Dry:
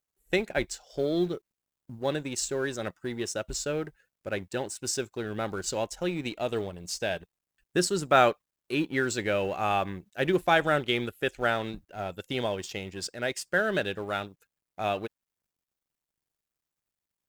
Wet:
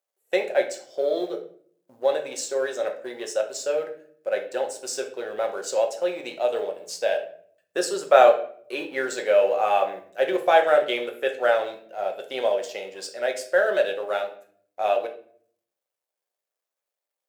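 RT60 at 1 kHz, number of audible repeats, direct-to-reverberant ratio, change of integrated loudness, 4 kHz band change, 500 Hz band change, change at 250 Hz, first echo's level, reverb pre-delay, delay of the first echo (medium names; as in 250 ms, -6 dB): 0.50 s, no echo, 3.0 dB, +5.0 dB, 0.0 dB, +8.0 dB, -5.0 dB, no echo, 5 ms, no echo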